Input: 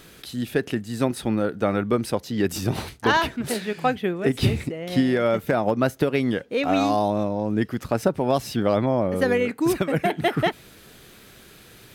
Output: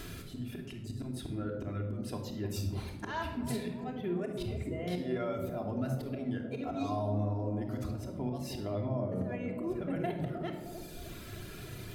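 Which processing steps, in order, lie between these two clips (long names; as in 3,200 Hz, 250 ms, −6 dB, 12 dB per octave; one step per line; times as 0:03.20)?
reverb reduction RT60 1.1 s
0:09.03–0:09.90: high-shelf EQ 2,100 Hz −10.5 dB
harmonic and percussive parts rebalanced percussive −7 dB
low-shelf EQ 160 Hz +9 dB
volume swells 338 ms
brickwall limiter −22.5 dBFS, peak gain reduction 11 dB
downward compressor 2 to 1, threshold −47 dBFS, peak gain reduction 11.5 dB
delay with a band-pass on its return 309 ms, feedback 54%, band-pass 400 Hz, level −7 dB
rectangular room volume 3,100 cubic metres, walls furnished, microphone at 3.1 metres
level +3 dB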